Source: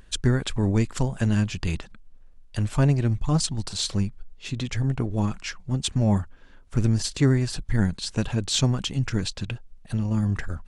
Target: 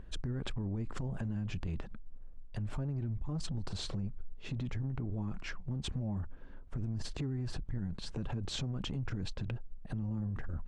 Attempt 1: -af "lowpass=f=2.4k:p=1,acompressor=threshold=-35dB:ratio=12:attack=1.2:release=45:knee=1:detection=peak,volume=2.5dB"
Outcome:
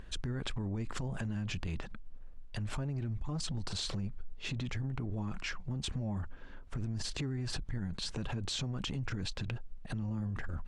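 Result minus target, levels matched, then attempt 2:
2000 Hz band +4.5 dB
-af "lowpass=f=610:p=1,acompressor=threshold=-35dB:ratio=12:attack=1.2:release=45:knee=1:detection=peak,volume=2.5dB"

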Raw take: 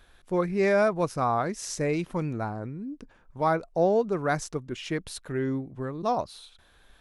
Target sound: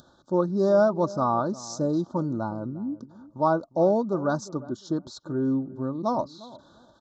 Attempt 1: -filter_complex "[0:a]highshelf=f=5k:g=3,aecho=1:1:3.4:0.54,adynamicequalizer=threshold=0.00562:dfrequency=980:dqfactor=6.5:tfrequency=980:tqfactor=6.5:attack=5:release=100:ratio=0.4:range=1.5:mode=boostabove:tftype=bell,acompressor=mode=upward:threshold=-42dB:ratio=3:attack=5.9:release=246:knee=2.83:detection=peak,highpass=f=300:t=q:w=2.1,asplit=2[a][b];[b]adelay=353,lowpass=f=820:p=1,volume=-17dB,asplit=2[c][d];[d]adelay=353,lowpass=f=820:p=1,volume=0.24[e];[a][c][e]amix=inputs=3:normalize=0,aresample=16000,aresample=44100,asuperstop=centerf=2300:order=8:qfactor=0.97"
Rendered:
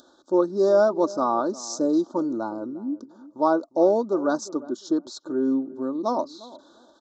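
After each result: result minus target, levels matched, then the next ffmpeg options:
125 Hz band -15.0 dB; 8000 Hz band +3.0 dB
-filter_complex "[0:a]highshelf=f=5k:g=3,aecho=1:1:3.4:0.54,adynamicequalizer=threshold=0.00562:dfrequency=980:dqfactor=6.5:tfrequency=980:tqfactor=6.5:attack=5:release=100:ratio=0.4:range=1.5:mode=boostabove:tftype=bell,acompressor=mode=upward:threshold=-42dB:ratio=3:attack=5.9:release=246:knee=2.83:detection=peak,highpass=f=140:t=q:w=2.1,asplit=2[a][b];[b]adelay=353,lowpass=f=820:p=1,volume=-17dB,asplit=2[c][d];[d]adelay=353,lowpass=f=820:p=1,volume=0.24[e];[a][c][e]amix=inputs=3:normalize=0,aresample=16000,aresample=44100,asuperstop=centerf=2300:order=8:qfactor=0.97"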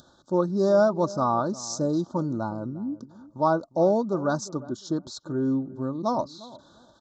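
8000 Hz band +5.0 dB
-filter_complex "[0:a]highshelf=f=5k:g=-5,aecho=1:1:3.4:0.54,adynamicequalizer=threshold=0.00562:dfrequency=980:dqfactor=6.5:tfrequency=980:tqfactor=6.5:attack=5:release=100:ratio=0.4:range=1.5:mode=boostabove:tftype=bell,acompressor=mode=upward:threshold=-42dB:ratio=3:attack=5.9:release=246:knee=2.83:detection=peak,highpass=f=140:t=q:w=2.1,asplit=2[a][b];[b]adelay=353,lowpass=f=820:p=1,volume=-17dB,asplit=2[c][d];[d]adelay=353,lowpass=f=820:p=1,volume=0.24[e];[a][c][e]amix=inputs=3:normalize=0,aresample=16000,aresample=44100,asuperstop=centerf=2300:order=8:qfactor=0.97"

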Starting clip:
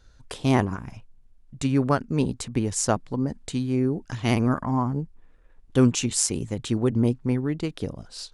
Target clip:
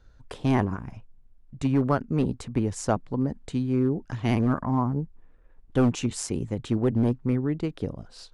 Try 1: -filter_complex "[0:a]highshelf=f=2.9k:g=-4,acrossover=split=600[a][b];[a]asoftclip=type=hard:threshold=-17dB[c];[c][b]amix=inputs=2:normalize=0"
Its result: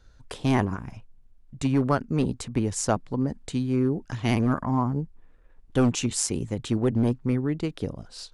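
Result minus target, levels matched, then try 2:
8000 Hz band +6.5 dB
-filter_complex "[0:a]highshelf=f=2.9k:g=-12,acrossover=split=600[a][b];[a]asoftclip=type=hard:threshold=-17dB[c];[c][b]amix=inputs=2:normalize=0"

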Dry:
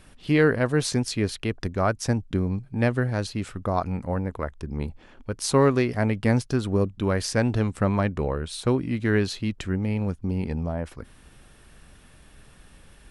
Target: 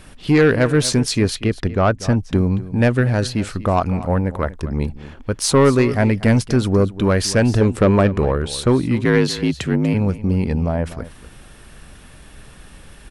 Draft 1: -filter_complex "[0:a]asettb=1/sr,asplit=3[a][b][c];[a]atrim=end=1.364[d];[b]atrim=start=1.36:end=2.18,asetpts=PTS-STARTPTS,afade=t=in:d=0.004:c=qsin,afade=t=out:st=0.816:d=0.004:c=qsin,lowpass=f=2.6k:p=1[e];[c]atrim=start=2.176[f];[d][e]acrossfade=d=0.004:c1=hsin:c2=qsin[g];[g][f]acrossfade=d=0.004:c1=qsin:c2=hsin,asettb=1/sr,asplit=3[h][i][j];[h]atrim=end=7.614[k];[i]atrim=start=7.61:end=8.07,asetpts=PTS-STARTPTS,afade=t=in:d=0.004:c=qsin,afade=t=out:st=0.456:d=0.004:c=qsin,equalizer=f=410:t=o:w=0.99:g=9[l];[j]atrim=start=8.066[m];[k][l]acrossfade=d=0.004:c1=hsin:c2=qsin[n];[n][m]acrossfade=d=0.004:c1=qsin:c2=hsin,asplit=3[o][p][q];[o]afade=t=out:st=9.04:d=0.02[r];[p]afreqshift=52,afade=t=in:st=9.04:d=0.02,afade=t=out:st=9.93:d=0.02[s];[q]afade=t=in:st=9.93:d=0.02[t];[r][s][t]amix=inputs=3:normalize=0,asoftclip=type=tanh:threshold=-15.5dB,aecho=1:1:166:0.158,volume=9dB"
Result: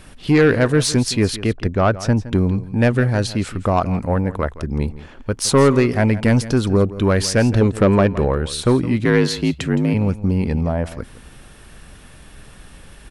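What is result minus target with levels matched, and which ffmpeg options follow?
echo 75 ms early
-filter_complex "[0:a]asettb=1/sr,asplit=3[a][b][c];[a]atrim=end=1.364[d];[b]atrim=start=1.36:end=2.18,asetpts=PTS-STARTPTS,afade=t=in:d=0.004:c=qsin,afade=t=out:st=0.816:d=0.004:c=qsin,lowpass=f=2.6k:p=1[e];[c]atrim=start=2.176[f];[d][e]acrossfade=d=0.004:c1=hsin:c2=qsin[g];[g][f]acrossfade=d=0.004:c1=qsin:c2=hsin,asettb=1/sr,asplit=3[h][i][j];[h]atrim=end=7.614[k];[i]atrim=start=7.61:end=8.07,asetpts=PTS-STARTPTS,afade=t=in:d=0.004:c=qsin,afade=t=out:st=0.456:d=0.004:c=qsin,equalizer=f=410:t=o:w=0.99:g=9[l];[j]atrim=start=8.066[m];[k][l]acrossfade=d=0.004:c1=hsin:c2=qsin[n];[n][m]acrossfade=d=0.004:c1=qsin:c2=hsin,asplit=3[o][p][q];[o]afade=t=out:st=9.04:d=0.02[r];[p]afreqshift=52,afade=t=in:st=9.04:d=0.02,afade=t=out:st=9.93:d=0.02[s];[q]afade=t=in:st=9.93:d=0.02[t];[r][s][t]amix=inputs=3:normalize=0,asoftclip=type=tanh:threshold=-15.5dB,aecho=1:1:241:0.158,volume=9dB"

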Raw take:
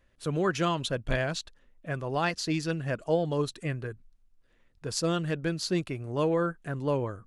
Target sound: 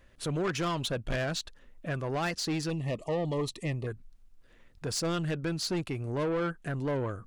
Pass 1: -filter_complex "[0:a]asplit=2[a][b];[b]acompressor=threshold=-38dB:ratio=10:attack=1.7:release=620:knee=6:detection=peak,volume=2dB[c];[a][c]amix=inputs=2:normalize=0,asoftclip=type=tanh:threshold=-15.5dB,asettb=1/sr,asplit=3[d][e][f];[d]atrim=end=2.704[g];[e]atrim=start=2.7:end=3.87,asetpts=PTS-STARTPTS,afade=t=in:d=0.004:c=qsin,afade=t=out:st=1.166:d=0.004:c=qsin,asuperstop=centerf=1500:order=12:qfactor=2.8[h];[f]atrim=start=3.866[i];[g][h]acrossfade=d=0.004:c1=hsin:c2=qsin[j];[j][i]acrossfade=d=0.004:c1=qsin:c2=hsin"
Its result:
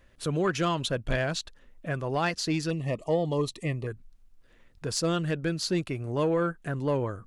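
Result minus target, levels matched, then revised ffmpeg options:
soft clip: distortion -13 dB
-filter_complex "[0:a]asplit=2[a][b];[b]acompressor=threshold=-38dB:ratio=10:attack=1.7:release=620:knee=6:detection=peak,volume=2dB[c];[a][c]amix=inputs=2:normalize=0,asoftclip=type=tanh:threshold=-26dB,asettb=1/sr,asplit=3[d][e][f];[d]atrim=end=2.704[g];[e]atrim=start=2.7:end=3.87,asetpts=PTS-STARTPTS,afade=t=in:d=0.004:c=qsin,afade=t=out:st=1.166:d=0.004:c=qsin,asuperstop=centerf=1500:order=12:qfactor=2.8[h];[f]atrim=start=3.866[i];[g][h]acrossfade=d=0.004:c1=hsin:c2=qsin[j];[j][i]acrossfade=d=0.004:c1=qsin:c2=hsin"

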